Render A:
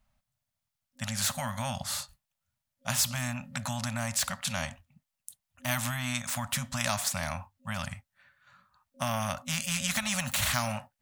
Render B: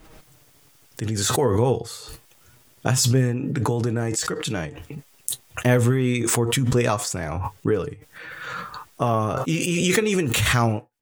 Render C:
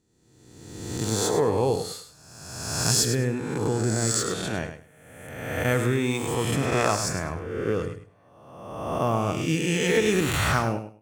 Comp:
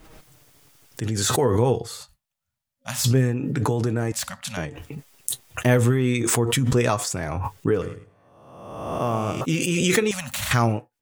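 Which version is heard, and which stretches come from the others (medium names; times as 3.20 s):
B
2.01–3.04 s: from A
4.12–4.57 s: from A
7.81–9.41 s: from C
10.11–10.51 s: from A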